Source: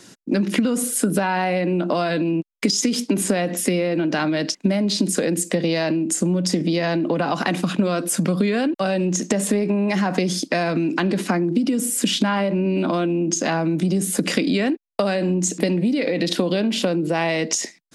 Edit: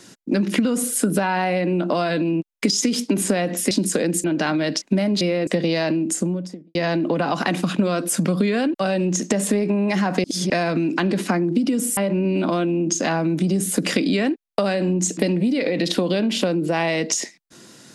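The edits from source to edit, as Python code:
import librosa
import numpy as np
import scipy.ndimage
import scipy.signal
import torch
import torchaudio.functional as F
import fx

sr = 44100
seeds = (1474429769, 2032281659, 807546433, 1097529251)

y = fx.studio_fade_out(x, sr, start_s=6.04, length_s=0.71)
y = fx.edit(y, sr, fx.swap(start_s=3.71, length_s=0.26, other_s=4.94, other_length_s=0.53),
    fx.reverse_span(start_s=10.24, length_s=0.26),
    fx.cut(start_s=11.97, length_s=0.41), tone=tone)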